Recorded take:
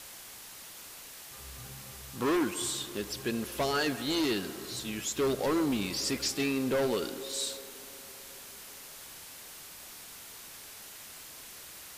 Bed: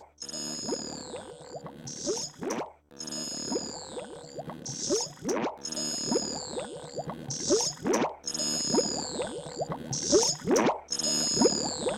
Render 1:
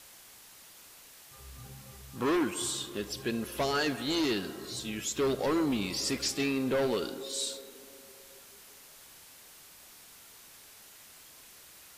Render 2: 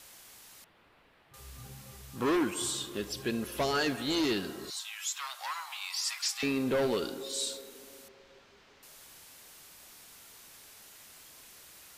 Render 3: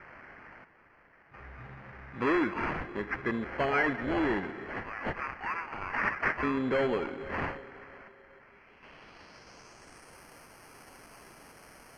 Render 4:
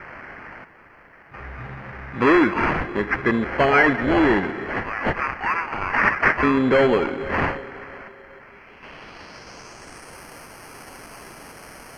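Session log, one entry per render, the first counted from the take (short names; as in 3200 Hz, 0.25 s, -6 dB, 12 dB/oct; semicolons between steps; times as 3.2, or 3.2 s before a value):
noise print and reduce 6 dB
0.64–1.34 air absorption 480 m; 4.7–6.43 steep high-pass 820 Hz 48 dB/oct; 8.08–8.83 air absorption 200 m
sample-and-hold 12×; low-pass sweep 1900 Hz -> 11000 Hz, 8.42–10.22
gain +11.5 dB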